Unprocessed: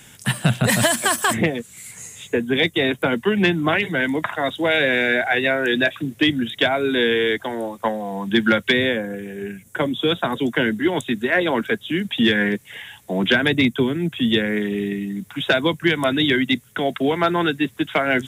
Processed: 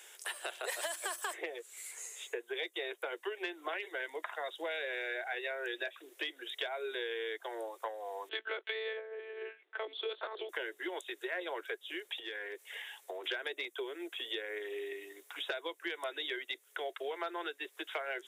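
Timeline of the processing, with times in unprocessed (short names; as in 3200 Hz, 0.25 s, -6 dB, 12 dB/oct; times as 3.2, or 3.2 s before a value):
8.29–10.49 monotone LPC vocoder at 8 kHz 220 Hz
12.16–13.24 compressor, threshold -25 dBFS
whole clip: steep high-pass 360 Hz 72 dB/oct; compressor 3:1, threshold -31 dBFS; gain -8 dB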